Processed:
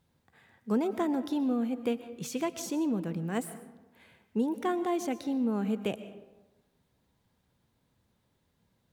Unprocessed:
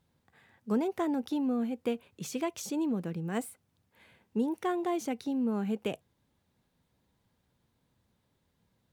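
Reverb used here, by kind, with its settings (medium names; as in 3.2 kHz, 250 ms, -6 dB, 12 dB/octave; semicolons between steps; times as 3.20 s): algorithmic reverb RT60 1.1 s, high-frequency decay 0.5×, pre-delay 85 ms, DRR 13 dB; trim +1 dB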